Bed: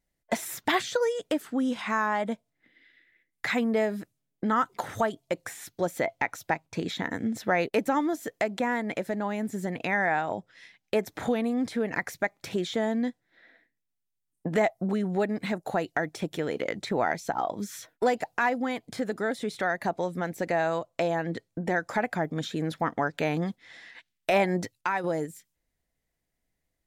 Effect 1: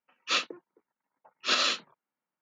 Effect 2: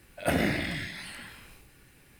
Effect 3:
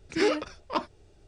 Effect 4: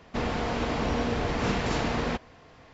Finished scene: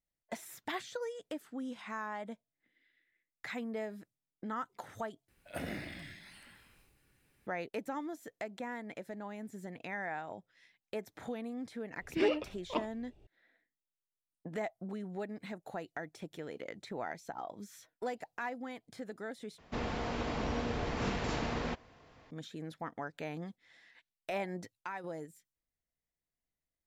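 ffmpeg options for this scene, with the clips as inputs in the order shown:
-filter_complex "[0:a]volume=0.211[s0];[3:a]firequalizer=gain_entry='entry(730,0);entry(1500,-12);entry(2700,2);entry(4800,-13)':delay=0.05:min_phase=1[s1];[s0]asplit=3[s2][s3][s4];[s2]atrim=end=5.284[s5];[2:a]atrim=end=2.19,asetpts=PTS-STARTPTS,volume=0.2[s6];[s3]atrim=start=7.466:end=19.584[s7];[4:a]atrim=end=2.73,asetpts=PTS-STARTPTS,volume=0.422[s8];[s4]atrim=start=22.306[s9];[s1]atrim=end=1.27,asetpts=PTS-STARTPTS,volume=0.596,afade=t=in:d=0.004:c=hsin,afade=t=out:st=1.266:d=0.004:c=hsin,adelay=12000[s10];[s5][s6]acrossfade=d=0.004:c1=hsin:c2=hsin[s11];[s11][s7]acrossfade=d=0.004:c1=hsin:c2=hsin[s12];[s12][s8]acrossfade=d=0.004:c1=hsin:c2=hsin[s13];[s13][s9]acrossfade=d=0.004:c1=hsin:c2=hsin[s14];[s14][s10]amix=inputs=2:normalize=0"

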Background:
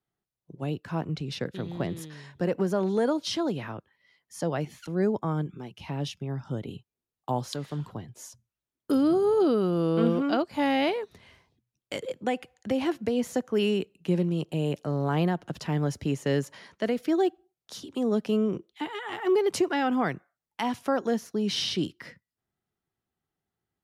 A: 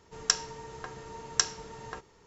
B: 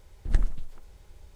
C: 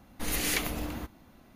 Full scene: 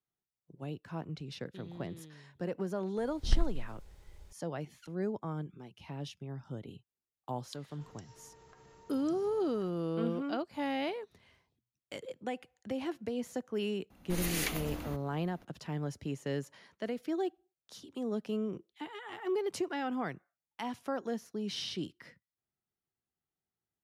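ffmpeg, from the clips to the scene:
-filter_complex "[0:a]volume=0.335[s0];[1:a]acompressor=threshold=0.00631:ratio=6:attack=3.2:release=140:knee=1:detection=peak[s1];[2:a]atrim=end=1.35,asetpts=PTS-STARTPTS,volume=0.631,afade=t=in:d=0.004:c=hsin,afade=t=out:st=1.346:d=0.004:c=hsin,adelay=2980[s2];[s1]atrim=end=2.26,asetpts=PTS-STARTPTS,volume=0.299,afade=t=in:d=0.004:c=hsin,afade=t=out:st=2.256:d=0.004:c=hsin,adelay=7690[s3];[3:a]atrim=end=1.55,asetpts=PTS-STARTPTS,volume=0.562,afade=t=in:d=0.004:c=hsin,afade=t=out:st=1.546:d=0.004:c=hsin,adelay=13900[s4];[s0][s2][s3][s4]amix=inputs=4:normalize=0"

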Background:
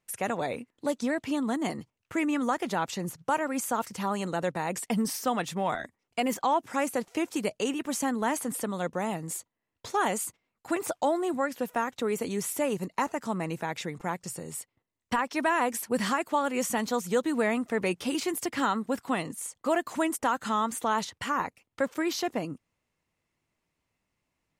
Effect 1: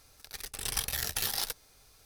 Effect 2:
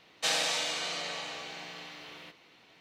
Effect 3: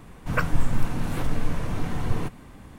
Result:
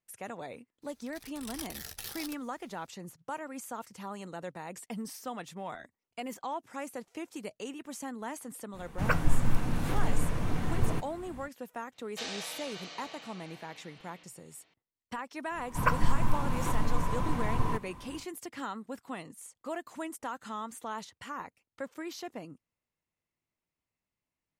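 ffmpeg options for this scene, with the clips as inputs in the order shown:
-filter_complex "[3:a]asplit=2[s0][s1];[0:a]volume=0.282[s2];[2:a]lowpass=f=7200:w=0.5412,lowpass=f=7200:w=1.3066[s3];[s1]equalizer=f=1000:w=5.8:g=14.5[s4];[1:a]atrim=end=2.05,asetpts=PTS-STARTPTS,volume=0.316,afade=t=in:d=0.004:c=hsin,afade=t=out:st=2.046:d=0.004:c=hsin,adelay=820[s5];[s0]atrim=end=2.78,asetpts=PTS-STARTPTS,volume=0.708,afade=t=in:d=0.05,afade=t=out:st=2.73:d=0.05,adelay=8720[s6];[s3]atrim=end=2.8,asetpts=PTS-STARTPTS,volume=0.316,afade=t=in:d=0.004:c=hsin,afade=t=out:st=2.796:d=0.004:c=hsin,adelay=11940[s7];[s4]atrim=end=2.78,asetpts=PTS-STARTPTS,volume=0.596,afade=t=in:d=0.1,afade=t=out:st=2.68:d=0.1,adelay=15490[s8];[s2][s5][s6][s7][s8]amix=inputs=5:normalize=0"

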